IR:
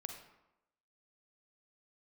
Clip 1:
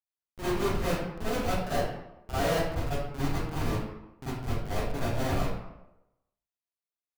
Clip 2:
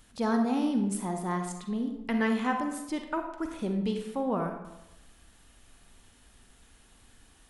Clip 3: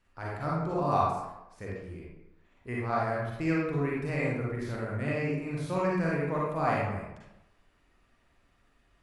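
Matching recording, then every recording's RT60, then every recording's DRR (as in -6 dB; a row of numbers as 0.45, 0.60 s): 2; 0.90, 0.90, 0.90 s; -14.5, 4.0, -5.5 dB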